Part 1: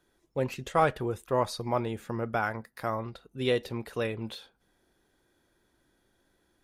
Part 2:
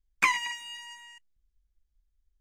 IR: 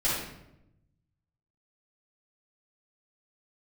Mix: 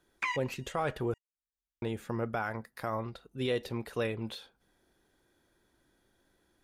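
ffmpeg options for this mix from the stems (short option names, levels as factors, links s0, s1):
-filter_complex "[0:a]volume=0.891,asplit=3[s0][s1][s2];[s0]atrim=end=1.14,asetpts=PTS-STARTPTS,afade=t=out:st=1.136:d=0.004:c=hsin[s3];[s1]atrim=start=1.14:end=1.82,asetpts=PTS-STARTPTS,volume=0[s4];[s2]atrim=start=1.82,asetpts=PTS-STARTPTS,afade=t=in:d=0.004:c=hsin[s5];[s3][s4][s5]concat=n=3:v=0:a=1,asplit=2[s6][s7];[1:a]highpass=f=420:p=1,acrossover=split=5100[s8][s9];[s9]acompressor=threshold=0.00251:ratio=4:attack=1:release=60[s10];[s8][s10]amix=inputs=2:normalize=0,volume=0.501[s11];[s7]apad=whole_len=105938[s12];[s11][s12]sidechaincompress=threshold=0.00282:ratio=4:attack=5.2:release=350[s13];[s6][s13]amix=inputs=2:normalize=0,alimiter=limit=0.0794:level=0:latency=1:release=67"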